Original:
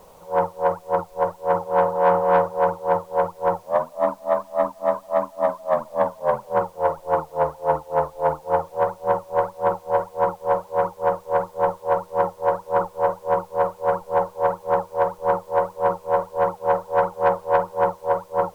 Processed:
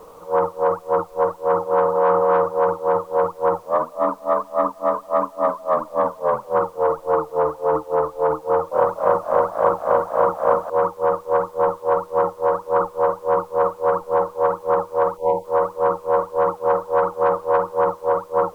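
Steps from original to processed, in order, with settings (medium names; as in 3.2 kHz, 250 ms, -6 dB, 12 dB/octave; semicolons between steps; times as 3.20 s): small resonant body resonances 310/450 Hz, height 13 dB, ringing for 70 ms; peak limiter -11 dBFS, peak gain reduction 7.5 dB; peaking EQ 1.2 kHz +13 dB 0.37 oct; 8.47–10.70 s: frequency-shifting echo 243 ms, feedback 40%, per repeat +56 Hz, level -3.5 dB; 15.17–15.45 s: spectral selection erased 1–2 kHz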